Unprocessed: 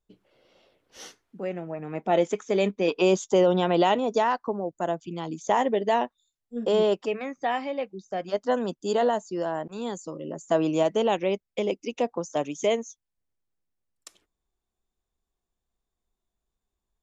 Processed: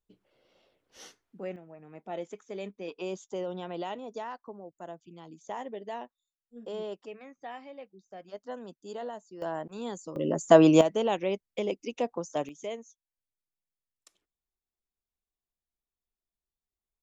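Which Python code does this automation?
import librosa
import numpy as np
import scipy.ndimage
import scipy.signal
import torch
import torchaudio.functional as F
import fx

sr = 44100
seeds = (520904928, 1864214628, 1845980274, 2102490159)

y = fx.gain(x, sr, db=fx.steps((0.0, -6.0), (1.56, -15.0), (9.42, -4.5), (10.16, 6.5), (10.81, -4.0), (12.49, -13.0)))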